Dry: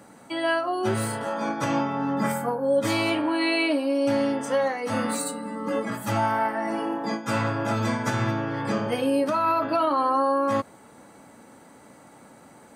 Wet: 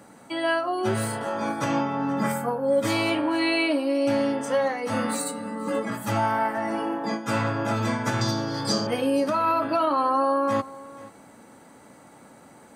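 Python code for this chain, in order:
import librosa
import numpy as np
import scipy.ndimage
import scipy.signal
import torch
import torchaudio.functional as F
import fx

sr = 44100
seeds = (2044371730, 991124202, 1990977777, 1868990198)

y = fx.high_shelf_res(x, sr, hz=3400.0, db=11.5, q=3.0, at=(8.21, 8.87))
y = y + 10.0 ** (-19.5 / 20.0) * np.pad(y, (int(480 * sr / 1000.0), 0))[:len(y)]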